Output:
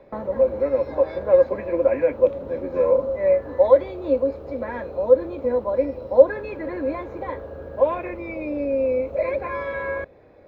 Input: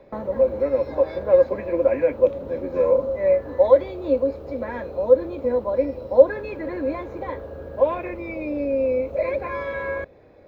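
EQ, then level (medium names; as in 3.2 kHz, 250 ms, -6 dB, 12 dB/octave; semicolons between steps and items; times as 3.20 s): tilt shelf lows -3.5 dB; treble shelf 2.3 kHz -10.5 dB; +2.5 dB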